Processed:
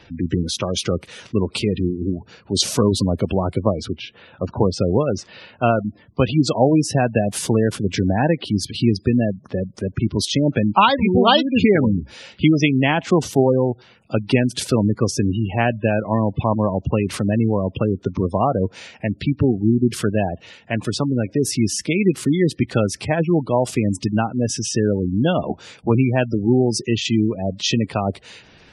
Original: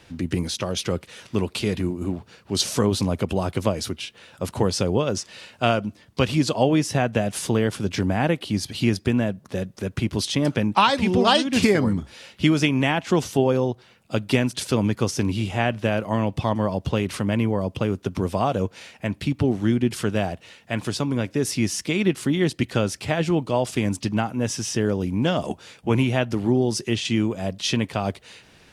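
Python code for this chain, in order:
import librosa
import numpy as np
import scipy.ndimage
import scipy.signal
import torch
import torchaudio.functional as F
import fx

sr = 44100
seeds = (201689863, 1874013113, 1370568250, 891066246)

y = fx.lowpass(x, sr, hz=2500.0, slope=6, at=(3.59, 6.23), fade=0.02)
y = fx.spec_gate(y, sr, threshold_db=-20, keep='strong')
y = y * librosa.db_to_amplitude(4.0)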